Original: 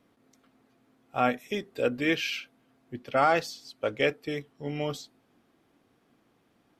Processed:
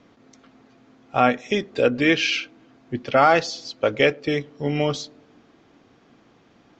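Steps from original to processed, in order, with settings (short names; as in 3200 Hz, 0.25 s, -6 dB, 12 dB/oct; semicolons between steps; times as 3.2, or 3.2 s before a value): steep low-pass 7100 Hz 72 dB/oct; in parallel at +1 dB: compressor, threshold -32 dBFS, peak gain reduction 13.5 dB; on the sum: narrowing echo 0.107 s, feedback 62%, band-pass 320 Hz, level -24 dB; gain +5 dB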